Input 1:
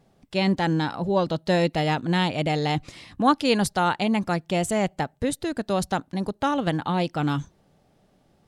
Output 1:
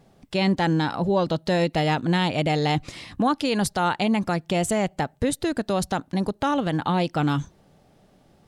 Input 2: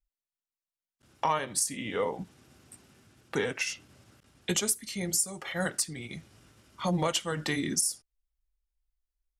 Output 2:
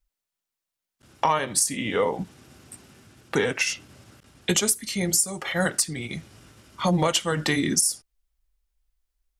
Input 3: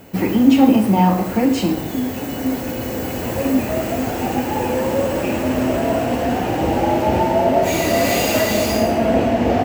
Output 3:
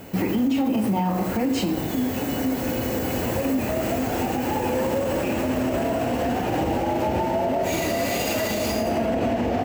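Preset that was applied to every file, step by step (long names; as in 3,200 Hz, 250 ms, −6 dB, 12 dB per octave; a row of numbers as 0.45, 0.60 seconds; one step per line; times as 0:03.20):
in parallel at +3 dB: downward compressor, threshold −26 dBFS
on the sum: brickwall limiter −9.5 dBFS
loudness normalisation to −24 LKFS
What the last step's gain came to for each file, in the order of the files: −3.0, 0.0, −5.5 decibels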